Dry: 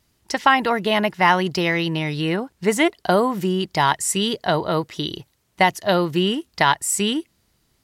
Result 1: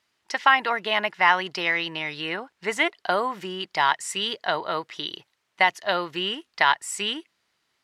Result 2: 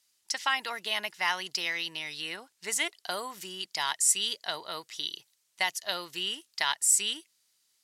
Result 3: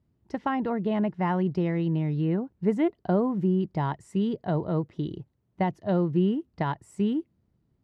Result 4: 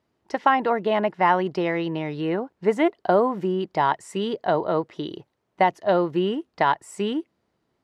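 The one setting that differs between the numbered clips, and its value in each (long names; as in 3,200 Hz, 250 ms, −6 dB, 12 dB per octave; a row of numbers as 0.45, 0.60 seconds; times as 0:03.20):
resonant band-pass, frequency: 1,900, 7,500, 140, 530 Hertz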